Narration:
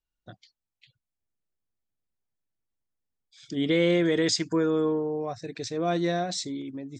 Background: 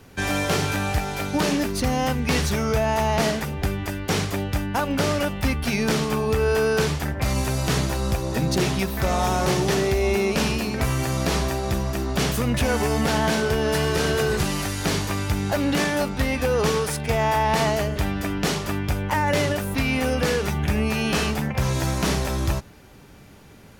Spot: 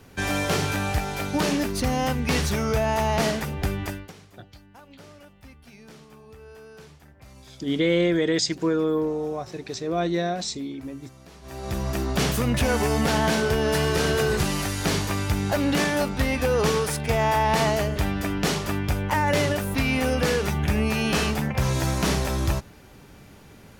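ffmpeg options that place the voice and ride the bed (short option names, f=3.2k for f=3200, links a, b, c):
-filter_complex "[0:a]adelay=4100,volume=1.5dB[a];[1:a]volume=23dB,afade=t=out:st=3.86:d=0.26:silence=0.0668344,afade=t=in:st=11.42:d=0.52:silence=0.0595662[b];[a][b]amix=inputs=2:normalize=0"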